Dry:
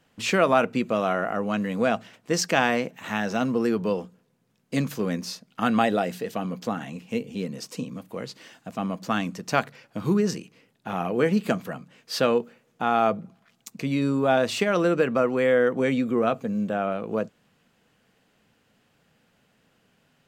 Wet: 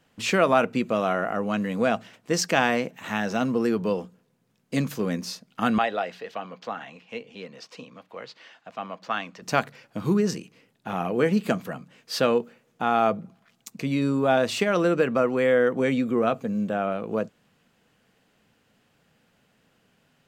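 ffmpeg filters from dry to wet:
-filter_complex "[0:a]asettb=1/sr,asplit=3[a][b][c];[a]atrim=end=5.784[d];[b]atrim=start=5.78:end=9.42,asetpts=PTS-STARTPTS,afade=t=in:d=0.004:c=qsin,afade=t=out:st=3.636:d=0.004:c=qsin,acrossover=split=510 4900:gain=0.178 1 0.0794[e][f][g];[e][f][g]amix=inputs=3:normalize=0[h];[c]atrim=start=9.416[i];[d][h]acrossfade=d=0.004:c1=hsin:c2=qsin[j];[j][i]acrossfade=d=0.004:c1=qsin:c2=hsin"

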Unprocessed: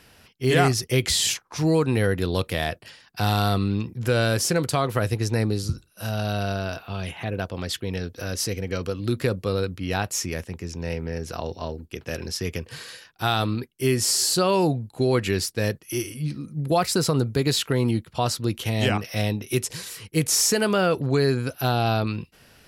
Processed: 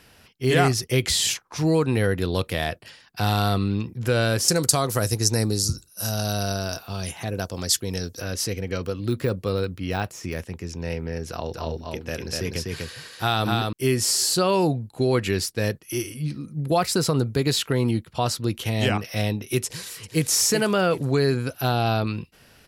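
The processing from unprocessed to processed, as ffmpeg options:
-filter_complex "[0:a]asettb=1/sr,asplit=3[a][b][c];[a]atrim=end=4.484[d];[b]atrim=start=4.48:end=8.2,asetpts=PTS-STARTPTS,afade=t=in:d=0.004:c=qsin,afade=t=out:st=3.716:d=0.004:c=qsin,highshelf=f=4.2k:t=q:w=1.5:g=11.5[e];[c]atrim=start=8.196[f];[d][e]acrossfade=d=0.004:c1=hsin:c2=qsin[g];[g][f]acrossfade=d=0.004:c1=qsin:c2=hsin,asettb=1/sr,asplit=3[h][i][j];[h]atrim=end=8.844[k];[i]atrim=start=8.84:end=10.37,asetpts=PTS-STARTPTS,afade=t=in:d=0.004:c=qsin,afade=t=out:st=1.526:d=0.004:c=qsin,deesser=0.85[l];[j]atrim=start=10.366[m];[k][l]acrossfade=d=0.004:c1=hsin:c2=qsin[n];[n][m]acrossfade=d=0.004:c1=qsin:c2=hsin,asettb=1/sr,asplit=3[o][p][q];[o]atrim=end=11.294[r];[p]atrim=start=11.29:end=13.73,asetpts=PTS-STARTPTS,afade=t=in:d=0.004:c=qsin,afade=t=out:st=2.436:d=0.004:c=qsin,aecho=1:1:247:0.708,atrim=end_sample=107604[s];[q]atrim=start=13.726[t];[r][s]acrossfade=d=0.004:c1=hsin:c2=qsin[u];[u][t]acrossfade=d=0.004:c1=qsin:c2=hsin,asplit=2[v][w];[w]afade=t=in:st=19.65:d=0.01,afade=t=out:st=20.28:d=0.01,aecho=0:1:380|760|1140|1520|1900:0.298538|0.134342|0.060454|0.0272043|0.0122419[x];[v][x]amix=inputs=2:normalize=0"

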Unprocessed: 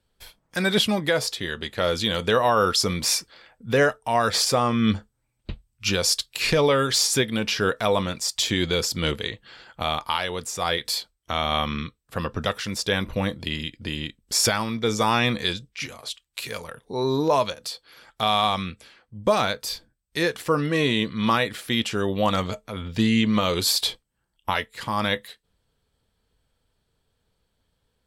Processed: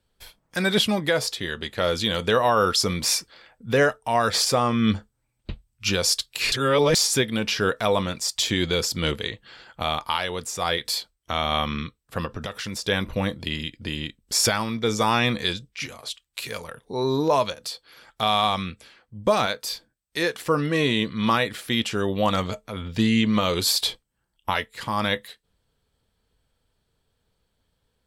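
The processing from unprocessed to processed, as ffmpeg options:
-filter_complex "[0:a]asettb=1/sr,asplit=3[a][b][c];[a]atrim=end=12.254[d];[b]atrim=start=12.25:end=12.85,asetpts=PTS-STARTPTS,afade=t=in:d=0.004:c=qsin,afade=t=out:st=0.596:d=0.004:c=qsin,acompressor=threshold=-27dB:ratio=6:attack=3.2:release=140:knee=1:detection=peak[e];[c]atrim=start=12.846[f];[d][e]acrossfade=d=0.004:c1=hsin:c2=qsin[g];[g][f]acrossfade=d=0.004:c1=qsin:c2=hsin,asettb=1/sr,asplit=3[h][i][j];[h]atrim=end=19.464[k];[i]atrim=start=19.46:end=20.42,asetpts=PTS-STARTPTS,afade=t=in:d=0.004:c=qsin,afade=t=out:st=0.956:d=0.004:c=qsin,lowshelf=f=150:g=-10.5[l];[j]atrim=start=20.416[m];[k][l]acrossfade=d=0.004:c1=hsin:c2=qsin[n];[n][m]acrossfade=d=0.004:c1=qsin:c2=hsin,asplit=3[o][p][q];[o]atrim=end=6.522[r];[p]atrim=start=6.518:end=6.952,asetpts=PTS-STARTPTS,areverse[s];[q]atrim=start=6.948[t];[r][s]acrossfade=d=0.004:c1=hsin:c2=hsin[u];[u][t]acrossfade=d=0.004:c1=hsin:c2=hsin"

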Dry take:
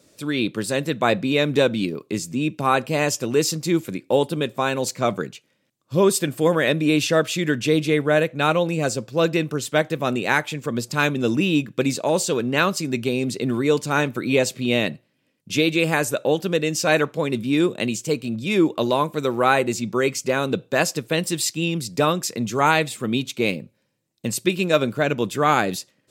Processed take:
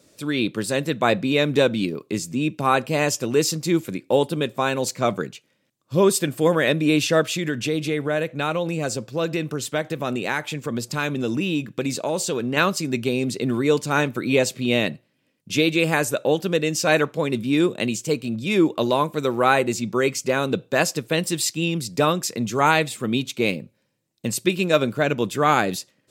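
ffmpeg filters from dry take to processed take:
-filter_complex "[0:a]asettb=1/sr,asplit=3[a][b][c];[a]atrim=end=7.364[d];[b]atrim=start=7.36:end=12.57,asetpts=PTS-STARTPTS,afade=t=in:d=0.004:c=qsin,afade=t=out:st=5.206:d=0.004:c=qsin,acompressor=threshold=-22dB:ratio=2:attack=3.2:release=140:knee=1:detection=peak[e];[c]atrim=start=12.566[f];[d][e]acrossfade=d=0.004:c1=hsin:c2=qsin[g];[g][f]acrossfade=d=0.004:c1=qsin:c2=hsin"

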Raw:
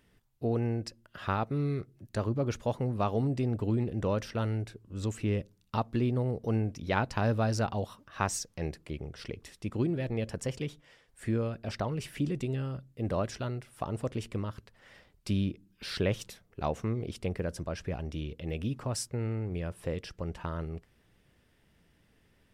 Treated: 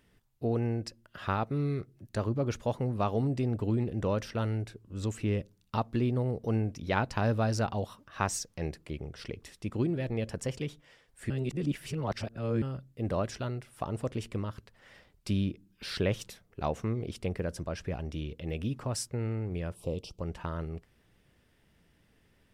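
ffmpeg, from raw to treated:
-filter_complex "[0:a]asplit=3[a][b][c];[a]afade=t=out:st=19.74:d=0.02[d];[b]asuperstop=centerf=1700:order=4:qfactor=0.91,afade=t=in:st=19.74:d=0.02,afade=t=out:st=20.19:d=0.02[e];[c]afade=t=in:st=20.19:d=0.02[f];[d][e][f]amix=inputs=3:normalize=0,asplit=3[g][h][i];[g]atrim=end=11.302[j];[h]atrim=start=11.298:end=12.622,asetpts=PTS-STARTPTS,areverse[k];[i]atrim=start=12.618[l];[j][k]acrossfade=d=0.004:c1=hsin:c2=hsin[m];[m][l]acrossfade=d=0.004:c1=hsin:c2=hsin"

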